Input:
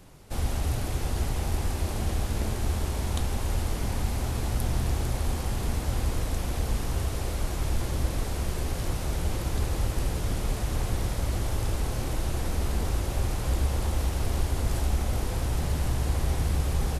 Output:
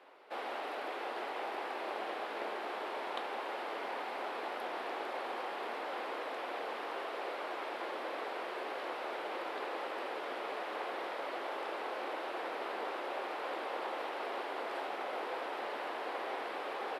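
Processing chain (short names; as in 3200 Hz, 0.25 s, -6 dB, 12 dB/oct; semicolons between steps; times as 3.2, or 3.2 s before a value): Bessel high-pass 620 Hz, order 6; air absorption 440 m; gain +4.5 dB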